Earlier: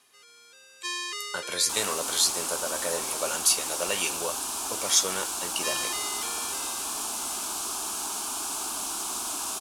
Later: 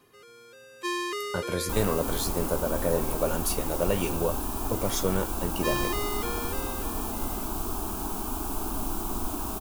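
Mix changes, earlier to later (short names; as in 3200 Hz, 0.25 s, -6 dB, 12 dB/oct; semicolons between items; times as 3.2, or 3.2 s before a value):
first sound +6.5 dB; master: remove weighting filter ITU-R 468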